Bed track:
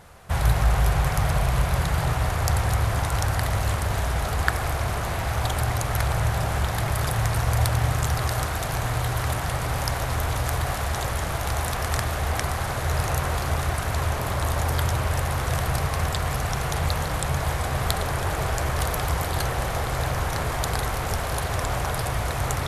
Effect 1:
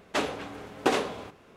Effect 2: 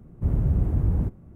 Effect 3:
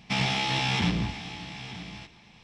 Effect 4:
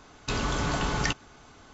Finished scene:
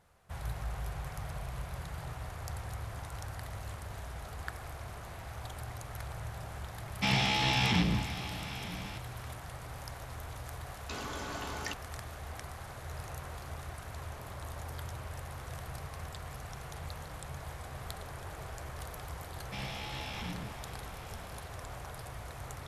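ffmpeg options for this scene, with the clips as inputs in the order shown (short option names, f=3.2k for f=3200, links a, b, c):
-filter_complex "[3:a]asplit=2[a][b];[0:a]volume=-18dB[c];[4:a]highpass=230[d];[a]atrim=end=2.43,asetpts=PTS-STARTPTS,volume=-2dB,afade=t=in:d=0.004:c=hsin,afade=t=out:st=2.426:d=0.004:c=hsin,adelay=6920[e];[d]atrim=end=1.73,asetpts=PTS-STARTPTS,volume=-10.5dB,afade=t=in:d=0.004:c=hsin,afade=t=out:st=1.726:d=0.004:c=hsin,adelay=10610[f];[b]atrim=end=2.43,asetpts=PTS-STARTPTS,volume=-15dB,afade=t=in:d=0.004:c=hsin,afade=t=out:st=2.426:d=0.004:c=hsin,adelay=19420[g];[c][e][f][g]amix=inputs=4:normalize=0"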